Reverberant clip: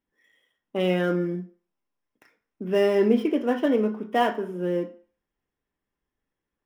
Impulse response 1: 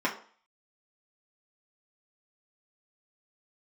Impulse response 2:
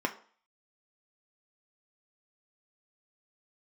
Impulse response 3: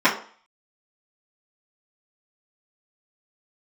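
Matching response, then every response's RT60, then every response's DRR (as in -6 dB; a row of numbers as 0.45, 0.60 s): 2; 0.45, 0.45, 0.45 s; -5.0, 3.0, -12.5 dB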